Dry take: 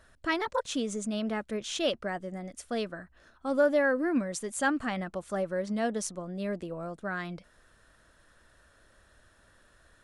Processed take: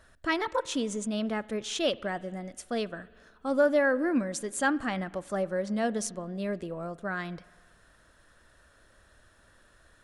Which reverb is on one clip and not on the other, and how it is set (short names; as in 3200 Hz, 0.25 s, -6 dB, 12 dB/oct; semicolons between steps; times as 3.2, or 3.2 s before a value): spring tank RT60 1.6 s, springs 47 ms, chirp 35 ms, DRR 19.5 dB; gain +1 dB